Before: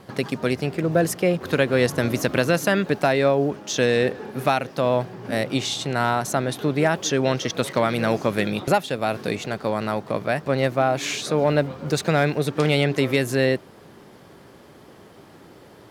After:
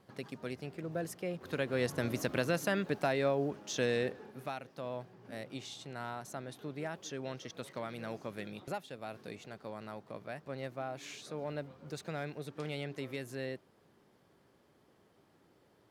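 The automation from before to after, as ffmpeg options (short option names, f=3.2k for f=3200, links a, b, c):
-af "volume=-12dB,afade=t=in:st=1.28:d=0.73:silence=0.501187,afade=t=out:st=3.93:d=0.5:silence=0.398107"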